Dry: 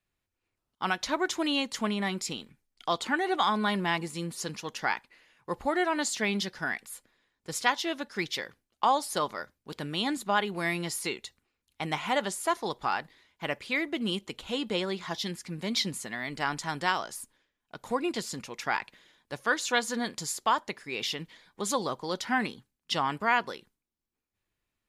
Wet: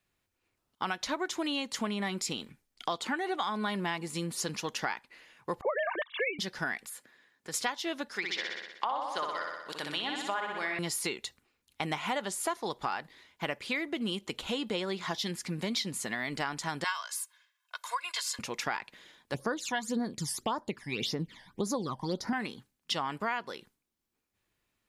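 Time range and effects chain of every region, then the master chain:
5.61–6.39 s: formants replaced by sine waves + comb 1.8 ms, depth 87%
6.89–7.54 s: high-pass 130 Hz + compression 2:1, threshold -49 dBFS + peaking EQ 1.7 kHz +7.5 dB 0.32 oct
8.16–10.79 s: high-pass 1 kHz 6 dB/octave + low-pass that closes with the level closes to 2 kHz, closed at -27.5 dBFS + flutter echo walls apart 10.6 m, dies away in 0.9 s
16.84–18.39 s: high-pass 1 kHz 24 dB/octave + comb 1.9 ms, depth 69%
19.34–22.33 s: bass shelf 480 Hz +9 dB + phase shifter stages 12, 1.8 Hz, lowest notch 400–3100 Hz
whole clip: bass shelf 64 Hz -7.5 dB; compression 4:1, threshold -36 dBFS; trim +5 dB

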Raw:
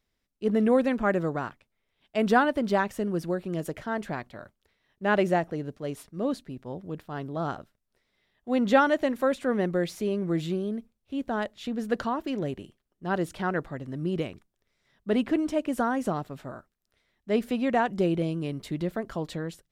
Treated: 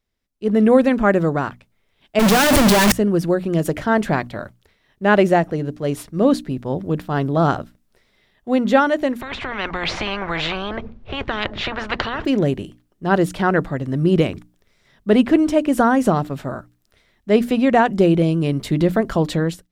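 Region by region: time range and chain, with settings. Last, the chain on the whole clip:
2.19–2.92 s: one-bit comparator + three bands expanded up and down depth 100%
9.21–12.25 s: tape spacing loss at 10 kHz 44 dB + spectrum-flattening compressor 10:1
whole clip: hum notches 60/120/180/240/300 Hz; level rider gain up to 15 dB; bass shelf 250 Hz +3.5 dB; trim -1.5 dB

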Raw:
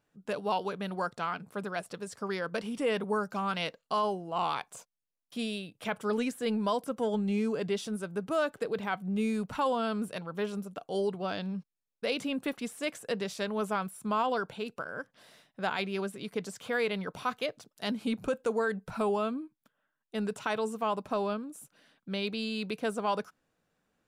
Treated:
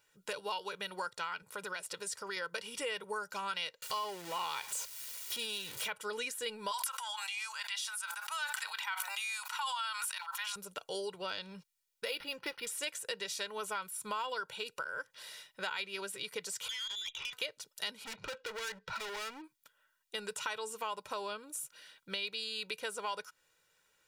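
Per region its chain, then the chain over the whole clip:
1.42–2.37 s: high-pass 53 Hz + compression 2.5:1, threshold -36 dBFS
3.82–5.88 s: jump at every zero crossing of -39 dBFS + high-pass 50 Hz
6.71–10.56 s: steep high-pass 820 Hz 48 dB/octave + decay stretcher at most 25 dB/s
12.05–12.67 s: comb 5.9 ms, depth 32% + decimation joined by straight lines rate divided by 6×
16.68–17.33 s: frequency inversion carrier 3.7 kHz + compression 4:1, threshold -40 dBFS + valve stage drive 38 dB, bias 0.65
18.04–19.44 s: low-pass 5.1 kHz 24 dB/octave + dynamic bell 2.1 kHz, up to +5 dB, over -46 dBFS, Q 1 + hard clipper -36.5 dBFS
whole clip: tilt shelf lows -9.5 dB; comb 2.1 ms, depth 63%; compression 3:1, threshold -39 dBFS; trim +1 dB

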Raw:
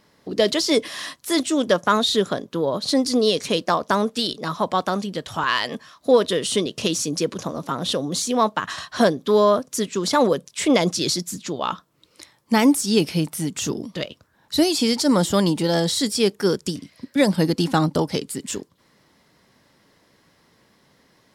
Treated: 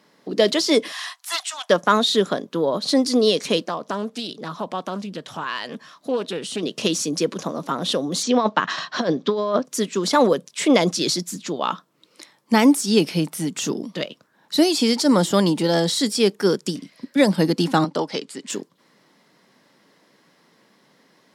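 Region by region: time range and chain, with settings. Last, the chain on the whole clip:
0.92–1.70 s: steep high-pass 690 Hz 96 dB/octave + loudspeaker Doppler distortion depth 0.11 ms
3.66–6.63 s: bass shelf 93 Hz +11 dB + compression 1.5:1, threshold -39 dBFS + loudspeaker Doppler distortion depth 0.21 ms
8.23–9.65 s: low-pass 6 kHz 24 dB/octave + compressor with a negative ratio -19 dBFS, ratio -0.5
17.84–18.50 s: band-pass 110–6300 Hz + bass shelf 270 Hz -11.5 dB
whole clip: high-pass 160 Hz 24 dB/octave; treble shelf 7.8 kHz -4.5 dB; trim +1.5 dB

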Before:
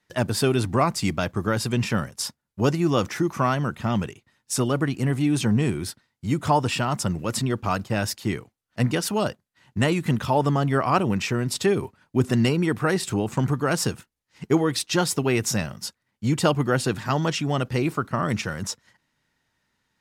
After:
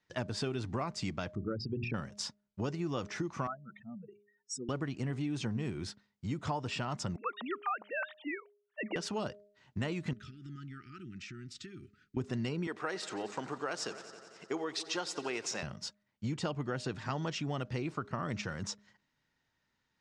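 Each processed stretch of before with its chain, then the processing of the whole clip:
1.35–1.94 s: resonances exaggerated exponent 3 + low-pass 5.2 kHz 24 dB/octave + hum notches 60/120/180/240/300/360 Hz
3.47–4.69 s: spectral contrast enhancement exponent 3.7 + high-pass 460 Hz
7.16–8.96 s: formants replaced by sine waves + high-pass 470 Hz + dynamic bell 1.3 kHz, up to +6 dB, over -38 dBFS, Q 1.4
10.13–12.17 s: compression 4:1, threshold -38 dBFS + brick-wall FIR band-stop 390–1200 Hz
12.67–15.63 s: high-pass 410 Hz + multi-head delay 89 ms, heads all three, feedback 60%, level -22 dB
whole clip: low-pass 6.9 kHz 24 dB/octave; de-hum 205.2 Hz, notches 3; compression 4:1, threshold -26 dBFS; trim -7 dB

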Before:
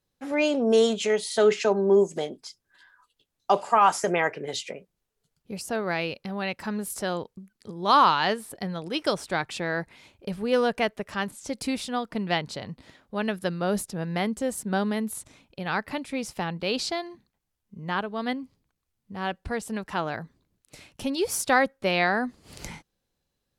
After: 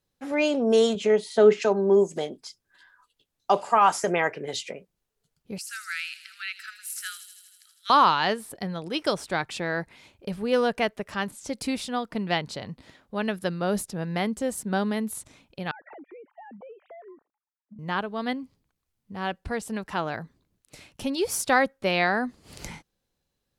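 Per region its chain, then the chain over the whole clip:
0.95–1.62 s: high-pass 190 Hz + tilt EQ -3 dB/octave
5.58–7.90 s: Chebyshev high-pass 1.3 kHz, order 8 + feedback echo behind a high-pass 80 ms, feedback 74%, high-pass 4.7 kHz, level -6 dB
15.71–17.79 s: formants replaced by sine waves + low-pass 1.7 kHz 24 dB/octave + compression 12:1, threshold -42 dBFS
whole clip: none

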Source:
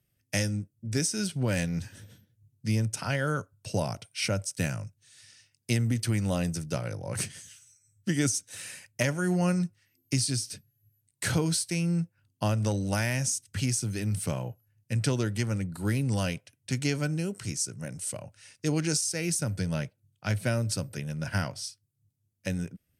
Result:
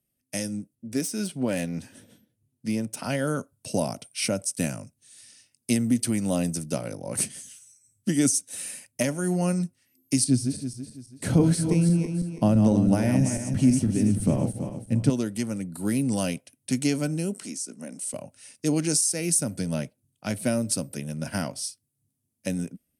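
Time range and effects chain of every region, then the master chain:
0.75–3.04 s: self-modulated delay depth 0.051 ms + tone controls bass -5 dB, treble -6 dB
10.24–15.10 s: backward echo that repeats 165 ms, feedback 56%, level -6 dB + tilt EQ -3 dB/octave
17.37–18.14 s: Chebyshev high-pass 220 Hz, order 3 + treble shelf 12 kHz -11 dB + compression 2:1, threshold -39 dBFS
whole clip: fifteen-band graphic EQ 100 Hz -9 dB, 250 Hz +10 dB, 630 Hz +4 dB, 1.6 kHz -4 dB, 10 kHz +11 dB; level rider gain up to 7 dB; trim -6.5 dB

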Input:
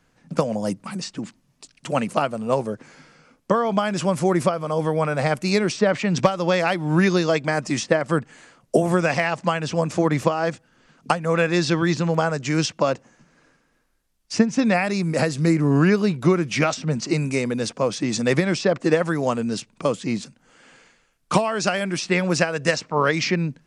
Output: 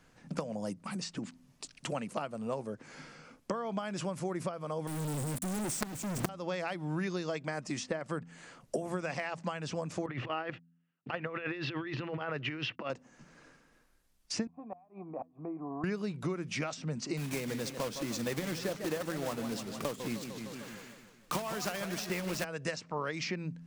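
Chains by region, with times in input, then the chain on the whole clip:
4.87–6.29 s: FFT filter 160 Hz 0 dB, 340 Hz +3 dB, 530 Hz -18 dB, 1.7 kHz -24 dB, 4.1 kHz -21 dB, 8.7 kHz +13 dB + companded quantiser 2-bit
10.06–12.90 s: gate -45 dBFS, range -40 dB + compressor with a negative ratio -24 dBFS, ratio -0.5 + cabinet simulation 110–3600 Hz, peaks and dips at 120 Hz +7 dB, 180 Hz -9 dB, 350 Hz +4 dB, 1.3 kHz +4 dB, 1.9 kHz +7 dB, 2.8 kHz +10 dB
14.47–15.84 s: cascade formant filter a + peaking EQ 310 Hz +11.5 dB 1 oct + inverted gate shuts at -24 dBFS, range -29 dB
17.17–22.45 s: block-companded coder 3-bit + modulated delay 152 ms, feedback 56%, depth 200 cents, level -11 dB
whole clip: de-hum 84.32 Hz, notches 3; compression 3:1, threshold -38 dBFS

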